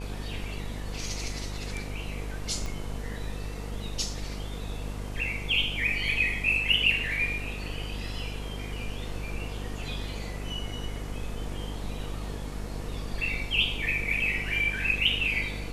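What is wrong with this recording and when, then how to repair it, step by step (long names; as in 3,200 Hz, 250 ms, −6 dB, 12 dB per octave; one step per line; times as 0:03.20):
mains buzz 50 Hz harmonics 20 −36 dBFS
0:02.66: click −22 dBFS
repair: click removal
hum removal 50 Hz, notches 20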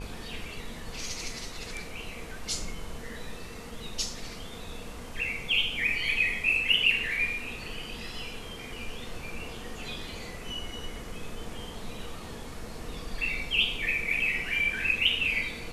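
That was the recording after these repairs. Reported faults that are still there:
0:02.66: click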